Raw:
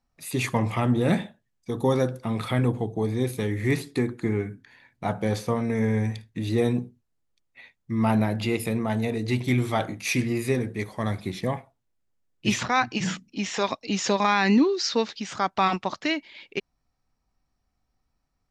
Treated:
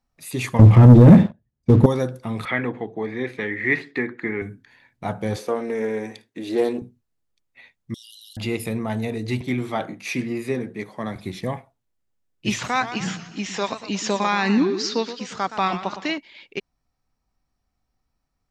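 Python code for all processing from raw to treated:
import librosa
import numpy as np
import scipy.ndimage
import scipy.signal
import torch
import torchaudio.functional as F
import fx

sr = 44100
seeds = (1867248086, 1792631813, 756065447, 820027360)

y = fx.chain(x, sr, fx.highpass(hz=44.0, slope=24),
    fx.tilt_eq(slope=-4.5),
    fx.leveller(passes=2), at=(0.59, 1.86))
y = fx.chain(y, sr, fx.bandpass_edges(low_hz=220.0, high_hz=3200.0),
    fx.peak_eq(hz=1900.0, db=13.5, octaves=0.71), at=(2.45, 4.42))
y = fx.chain(y, sr, fx.highpass_res(hz=350.0, q=1.7),
    fx.doppler_dist(depth_ms=0.11), at=(5.36, 6.82))
y = fx.chain(y, sr, fx.brickwall_highpass(low_hz=2800.0),
    fx.high_shelf(hz=5500.0, db=-5.5),
    fx.env_flatten(amount_pct=100), at=(7.94, 8.37))
y = fx.chain(y, sr, fx.highpass(hz=140.0, slope=24),
    fx.high_shelf(hz=4900.0, db=-9.0), at=(9.41, 11.16))
y = fx.chain(y, sr, fx.hum_notches(base_hz=50, count=3),
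    fx.echo_warbled(ms=117, feedback_pct=50, rate_hz=2.8, cents=177, wet_db=-12), at=(12.5, 16.18))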